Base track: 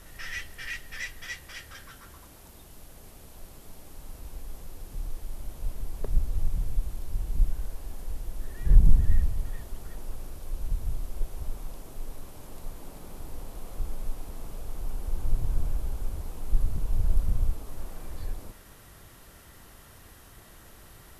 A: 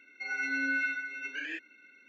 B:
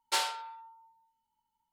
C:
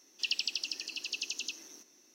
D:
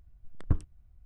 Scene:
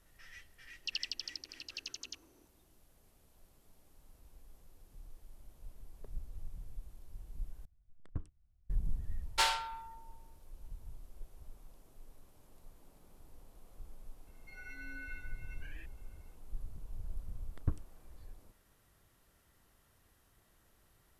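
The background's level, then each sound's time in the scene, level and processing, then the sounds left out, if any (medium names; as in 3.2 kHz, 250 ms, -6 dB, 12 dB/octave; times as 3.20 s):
base track -18 dB
0.64 s: add C -5.5 dB + local Wiener filter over 25 samples
7.65 s: replace with D -13.5 dB
9.26 s: add B -3.5 dB + peaking EQ 1.8 kHz +5.5 dB 2.6 oct
14.27 s: add A -17.5 dB
17.17 s: add D -7 dB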